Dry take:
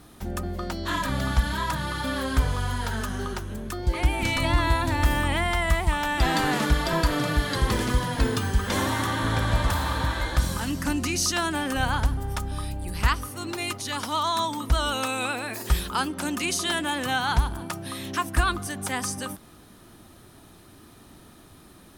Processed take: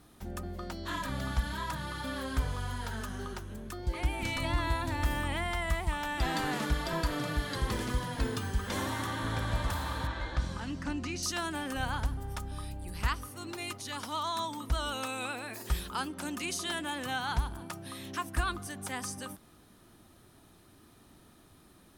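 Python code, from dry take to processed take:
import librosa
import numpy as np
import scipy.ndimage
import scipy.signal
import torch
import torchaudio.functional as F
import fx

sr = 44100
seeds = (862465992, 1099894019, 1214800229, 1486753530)

y = fx.air_absorb(x, sr, metres=96.0, at=(10.07, 11.23))
y = y * 10.0 ** (-8.5 / 20.0)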